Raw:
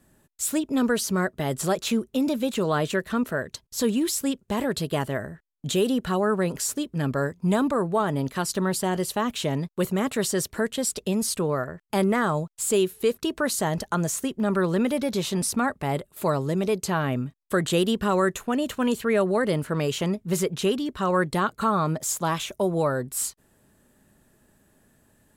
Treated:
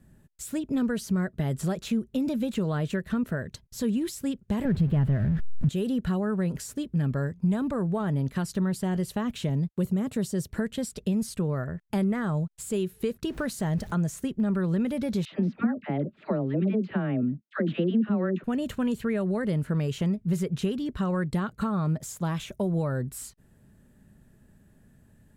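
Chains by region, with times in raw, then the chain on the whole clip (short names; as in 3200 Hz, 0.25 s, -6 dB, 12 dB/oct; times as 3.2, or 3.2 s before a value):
4.65–5.69 zero-crossing step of -30 dBFS + tone controls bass +10 dB, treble -14 dB
9.49–10.51 HPF 42 Hz + dynamic EQ 1800 Hz, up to -7 dB, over -44 dBFS, Q 0.77
13.27–13.92 zero-crossing step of -39.5 dBFS + de-esser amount 25%
15.25–18.44 speaker cabinet 190–3100 Hz, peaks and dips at 220 Hz +9 dB, 310 Hz +9 dB, 600 Hz +4 dB, 1000 Hz -5 dB + dispersion lows, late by 76 ms, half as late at 820 Hz
whole clip: band shelf 570 Hz -8 dB 2.5 oct; compressor 3:1, threshold -31 dBFS; tilt shelf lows +7.5 dB, about 1300 Hz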